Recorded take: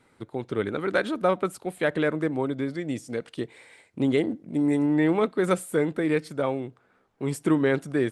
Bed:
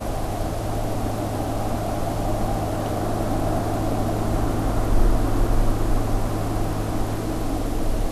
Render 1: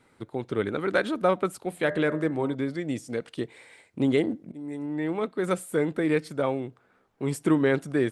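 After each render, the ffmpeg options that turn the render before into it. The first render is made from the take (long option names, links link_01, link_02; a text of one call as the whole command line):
ffmpeg -i in.wav -filter_complex "[0:a]asettb=1/sr,asplit=3[link_01][link_02][link_03];[link_01]atrim=end=1.694[link_04];[link_02]atrim=start=1.69:end=2.55,asetpts=PTS-STARTPTS,afade=type=in:duration=0.004:curve=qsin,afade=type=out:start_time=0.856:duration=0.004:curve=qsin,bandreject=frequency=85.75:width_type=h:width=4,bandreject=frequency=171.5:width_type=h:width=4,bandreject=frequency=257.25:width_type=h:width=4,bandreject=frequency=343:width_type=h:width=4,bandreject=frequency=428.75:width_type=h:width=4,bandreject=frequency=514.5:width_type=h:width=4,bandreject=frequency=600.25:width_type=h:width=4,bandreject=frequency=686:width_type=h:width=4,bandreject=frequency=771.75:width_type=h:width=4,bandreject=frequency=857.5:width_type=h:width=4,bandreject=frequency=943.25:width_type=h:width=4,bandreject=frequency=1029:width_type=h:width=4,bandreject=frequency=1114.75:width_type=h:width=4,bandreject=frequency=1200.5:width_type=h:width=4,bandreject=frequency=1286.25:width_type=h:width=4,bandreject=frequency=1372:width_type=h:width=4,bandreject=frequency=1457.75:width_type=h:width=4,bandreject=frequency=1543.5:width_type=h:width=4,bandreject=frequency=1629.25:width_type=h:width=4,bandreject=frequency=1715:width_type=h:width=4,bandreject=frequency=1800.75:width_type=h:width=4,bandreject=frequency=1886.5:width_type=h:width=4,bandreject=frequency=1972.25:width_type=h:width=4,bandreject=frequency=2058:width_type=h:width=4[link_05];[link_03]atrim=start=2.546[link_06];[link_04][link_05]acrossfade=duration=0.004:curve1=hsin:curve2=qsin[link_07];[link_07][link_06]acrossfade=duration=0.004:curve1=qsin:curve2=hsin,asplit=2[link_08][link_09];[link_08]atrim=end=4.52,asetpts=PTS-STARTPTS,afade=type=out:start_time=4.516:duration=0.004:curve=hsin:silence=0.133352[link_10];[link_09]atrim=start=4.52,asetpts=PTS-STARTPTS,afade=type=in:duration=1.51:silence=0.133352[link_11];[link_10][link_11]concat=n=2:v=0:a=1" out.wav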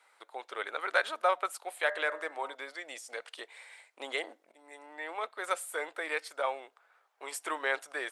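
ffmpeg -i in.wav -af "highpass=frequency=660:width=0.5412,highpass=frequency=660:width=1.3066" out.wav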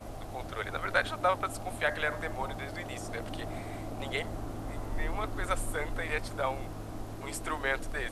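ffmpeg -i in.wav -i bed.wav -filter_complex "[1:a]volume=-16dB[link_01];[0:a][link_01]amix=inputs=2:normalize=0" out.wav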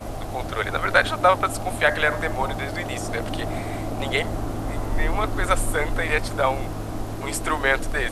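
ffmpeg -i in.wav -af "volume=10.5dB,alimiter=limit=-3dB:level=0:latency=1" out.wav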